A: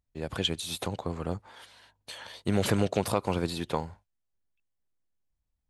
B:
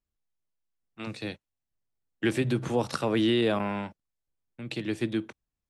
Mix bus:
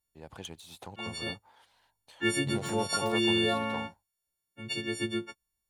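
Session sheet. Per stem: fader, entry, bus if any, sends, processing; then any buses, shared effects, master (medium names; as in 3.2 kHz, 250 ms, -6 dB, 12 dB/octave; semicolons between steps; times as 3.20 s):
-13.5 dB, 0.00 s, no send, self-modulated delay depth 0.11 ms; peaking EQ 850 Hz +8 dB 0.51 oct
-4.0 dB, 0.00 s, no send, partials quantised in pitch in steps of 4 st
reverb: none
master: none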